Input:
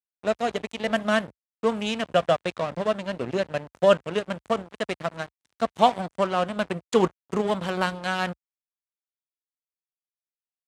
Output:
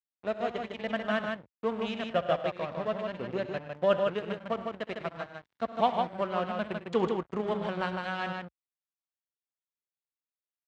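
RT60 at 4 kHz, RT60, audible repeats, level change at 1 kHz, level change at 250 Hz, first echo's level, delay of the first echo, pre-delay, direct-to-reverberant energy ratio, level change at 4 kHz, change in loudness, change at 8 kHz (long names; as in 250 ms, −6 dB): no reverb audible, no reverb audible, 3, −6.0 dB, −6.0 dB, −16.5 dB, 66 ms, no reverb audible, no reverb audible, −8.5 dB, −6.0 dB, below −15 dB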